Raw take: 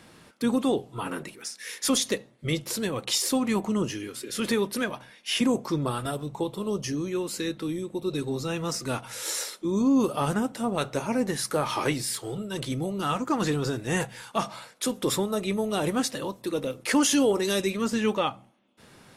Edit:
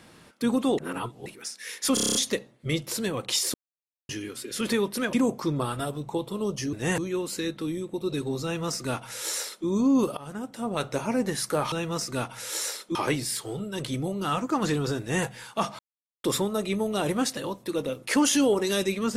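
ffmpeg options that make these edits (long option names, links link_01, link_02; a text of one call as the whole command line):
ffmpeg -i in.wav -filter_complex "[0:a]asplit=20[link_01][link_02][link_03][link_04][link_05][link_06][link_07][link_08][link_09][link_10][link_11][link_12][link_13][link_14][link_15][link_16][link_17][link_18][link_19][link_20];[link_01]atrim=end=0.782[link_21];[link_02]atrim=start=0.778:end=1.262,asetpts=PTS-STARTPTS,areverse[link_22];[link_03]atrim=start=1.258:end=1.972[link_23];[link_04]atrim=start=1.938:end=1.972[link_24];[link_05]atrim=start=1.938:end=1.972[link_25];[link_06]atrim=start=1.938:end=1.972[link_26];[link_07]atrim=start=1.938:end=1.972[link_27];[link_08]atrim=start=1.938:end=1.972[link_28];[link_09]atrim=start=1.938:end=1.972[link_29];[link_10]atrim=start=1.938:end=3.33,asetpts=PTS-STARTPTS,afade=type=out:start_time=1.388:duration=0.004:curve=hsin[link_30];[link_11]atrim=start=3.33:end=3.88,asetpts=PTS-STARTPTS,volume=0[link_31];[link_12]atrim=start=3.88:end=4.922,asetpts=PTS-STARTPTS,afade=type=in:duration=0.004:curve=hsin[link_32];[link_13]atrim=start=5.388:end=6.992[link_33];[link_14]atrim=start=13.778:end=14.032[link_34];[link_15]atrim=start=6.988:end=10.18,asetpts=PTS-STARTPTS,afade=type=out:start_time=3.188:duration=0.004:curve=hsin:silence=0.0841395[link_35];[link_16]atrim=start=10.18:end=11.732,asetpts=PTS-STARTPTS,afade=type=in:duration=0.7:silence=0.0841395[link_36];[link_17]atrim=start=8.448:end=9.682[link_37];[link_18]atrim=start=11.728:end=14.57,asetpts=PTS-STARTPTS,afade=type=out:start_time=2.838:duration=0.004:curve=hsin[link_38];[link_19]atrim=start=14.57:end=15.02,asetpts=PTS-STARTPTS,volume=0[link_39];[link_20]atrim=start=15.02,asetpts=PTS-STARTPTS,afade=type=in:duration=0.004:curve=hsin[link_40];[link_21][link_22]acrossfade=duration=0.004:curve1=hsin:curve2=hsin[link_41];[link_41][link_23]acrossfade=duration=0.004:curve1=hsin:curve2=hsin[link_42];[link_42][link_24]acrossfade=duration=0.004:curve1=hsin:curve2=hsin[link_43];[link_43][link_25]acrossfade=duration=0.004:curve1=hsin:curve2=hsin[link_44];[link_44][link_26]acrossfade=duration=0.004:curve1=hsin:curve2=hsin[link_45];[link_45][link_27]acrossfade=duration=0.004:curve1=hsin:curve2=hsin[link_46];[link_46][link_28]acrossfade=duration=0.004:curve1=hsin:curve2=hsin[link_47];[link_47][link_29]acrossfade=duration=0.004:curve1=hsin:curve2=hsin[link_48];[link_30][link_31][link_32]concat=n=3:v=0:a=1[link_49];[link_48][link_49]acrossfade=duration=0.004:curve1=hsin:curve2=hsin[link_50];[link_50][link_33]acrossfade=duration=0.004:curve1=hsin:curve2=hsin[link_51];[link_51][link_34]acrossfade=duration=0.004:curve1=hsin:curve2=hsin[link_52];[link_35][link_36]concat=n=2:v=0:a=1[link_53];[link_52][link_53]acrossfade=duration=0.004:curve1=hsin:curve2=hsin[link_54];[link_54][link_37]acrossfade=duration=0.004:curve1=hsin:curve2=hsin[link_55];[link_38][link_39][link_40]concat=n=3:v=0:a=1[link_56];[link_55][link_56]acrossfade=duration=0.004:curve1=hsin:curve2=hsin" out.wav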